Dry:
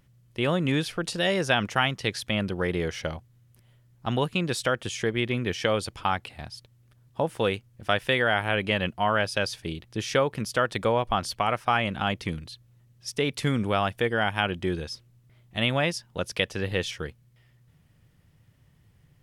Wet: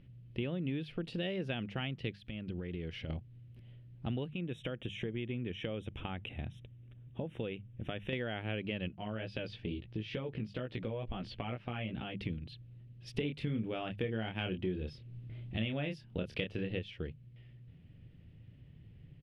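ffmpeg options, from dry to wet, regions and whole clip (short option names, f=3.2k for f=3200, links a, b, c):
-filter_complex "[0:a]asettb=1/sr,asplit=3[a][b][c];[a]atrim=end=2.134[d];[b]atrim=start=2.13:end=3.1,asetpts=PTS-STARTPTS,afade=t=in:d=0.004:c=qsin,afade=t=out:st=0.966:d=0.004:c=qsin,equalizer=f=560:w=0.65:g=-3.5,acompressor=threshold=-38dB:ratio=10:attack=3.2:release=140:knee=1:detection=peak[e];[c]atrim=start=3.096[f];[d][e]acrossfade=d=0.004:c1=hsin:c2=qsin[g];[g][f]acrossfade=d=0.004:c1=qsin:c2=hsin,asettb=1/sr,asplit=3[h][i][j];[h]atrim=end=4.314[k];[i]atrim=start=4.31:end=8.13,asetpts=PTS-STARTPTS,afade=t=in:d=0.004:c=qsin,afade=t=out:st=3.816:d=0.004:c=qsin,acompressor=threshold=-40dB:ratio=1.5:attack=3.2:release=140:knee=1:detection=peak,asuperstop=centerf=4600:order=12:qfactor=2.7[l];[j]atrim=start=8.126[m];[k][l]acrossfade=d=0.004:c1=hsin:c2=qsin[n];[n][m]acrossfade=d=0.004:c1=qsin:c2=hsin,asettb=1/sr,asplit=3[o][p][q];[o]atrim=end=8.884[r];[p]atrim=start=8.88:end=12.2,asetpts=PTS-STARTPTS,afade=t=in:d=0.004:c=qsin,afade=t=out:st=3.316:d=0.004:c=qsin,lowpass=5.4k,flanger=delay=15.5:depth=3.4:speed=2.2,acompressor=threshold=-32dB:ratio=2:attack=3.2:release=140:knee=1:detection=peak[s];[q]atrim=start=12.196[t];[r][s]acrossfade=d=0.004:c1=hsin:c2=qsin[u];[u][t]acrossfade=d=0.004:c1=qsin:c2=hsin,asettb=1/sr,asplit=3[v][w][x];[v]atrim=end=13.144[y];[w]atrim=start=13.14:end=16.79,asetpts=PTS-STARTPTS,afade=t=in:d=0.004:c=qsin,afade=t=out:st=3.646:d=0.004:c=qsin,acontrast=39,asplit=2[z][aa];[aa]adelay=27,volume=-5.5dB[ab];[z][ab]amix=inputs=2:normalize=0,atrim=end_sample=160965[ac];[x]atrim=start=16.786[ad];[y][ac]acrossfade=d=0.004:c1=hsin:c2=qsin[ae];[ae][ad]acrossfade=d=0.004:c1=qsin:c2=hsin,firequalizer=gain_entry='entry(270,0);entry(1000,-17);entry(2700,-4);entry(6300,-29)':delay=0.05:min_phase=1,acompressor=threshold=-41dB:ratio=5,bandreject=f=50:t=h:w=6,bandreject=f=100:t=h:w=6,bandreject=f=150:t=h:w=6,bandreject=f=200:t=h:w=6,volume=6dB"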